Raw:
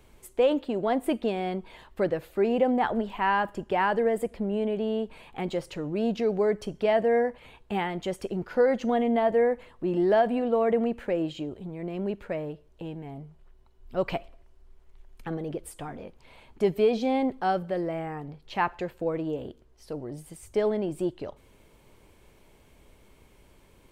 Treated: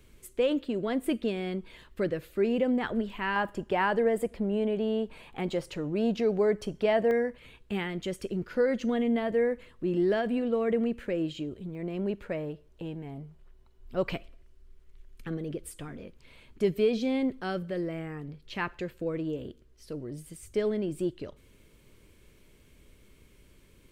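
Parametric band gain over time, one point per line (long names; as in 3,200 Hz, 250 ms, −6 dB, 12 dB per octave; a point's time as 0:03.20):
parametric band 800 Hz 0.83 octaves
−13.5 dB
from 0:03.36 −3.5 dB
from 0:07.11 −13.5 dB
from 0:11.75 −5 dB
from 0:14.12 −14 dB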